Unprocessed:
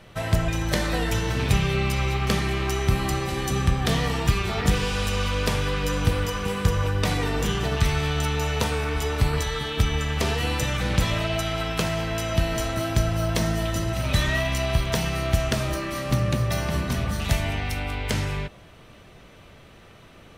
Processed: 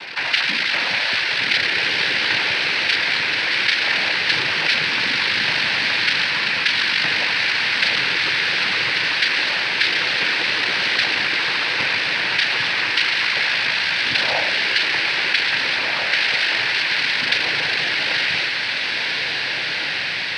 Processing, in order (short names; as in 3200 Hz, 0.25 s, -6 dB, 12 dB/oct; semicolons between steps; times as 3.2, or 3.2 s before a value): inverted band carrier 2700 Hz; noise vocoder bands 8; diffused feedback echo 1.777 s, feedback 46%, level -5.5 dB; fast leveller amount 50%; gain -1 dB